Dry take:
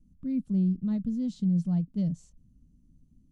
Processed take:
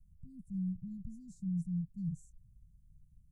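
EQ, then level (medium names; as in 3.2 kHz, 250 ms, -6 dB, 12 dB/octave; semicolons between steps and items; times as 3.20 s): inverse Chebyshev band-stop 420–2800 Hz, stop band 60 dB; dynamic bell 530 Hz, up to -3 dB, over -60 dBFS, Q 1.6; 0.0 dB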